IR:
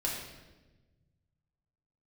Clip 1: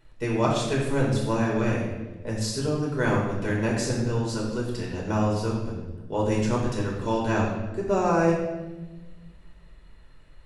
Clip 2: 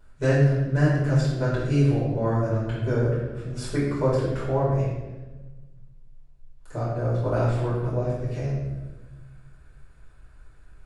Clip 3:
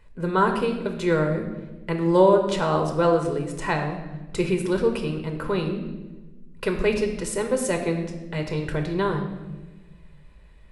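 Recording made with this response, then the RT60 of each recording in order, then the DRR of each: 1; 1.2 s, 1.2 s, 1.2 s; -4.0 dB, -10.5 dB, 3.5 dB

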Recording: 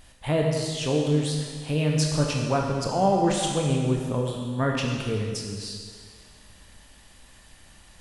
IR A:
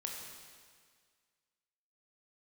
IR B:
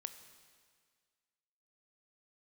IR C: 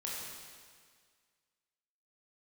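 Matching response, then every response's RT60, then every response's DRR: A; 1.8 s, 1.8 s, 1.8 s; -0.5 dB, 9.5 dB, -5.5 dB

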